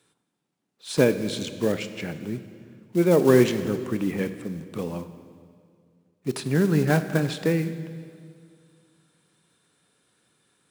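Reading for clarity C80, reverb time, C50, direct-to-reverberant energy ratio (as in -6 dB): 12.0 dB, 2.2 s, 11.5 dB, 10.0 dB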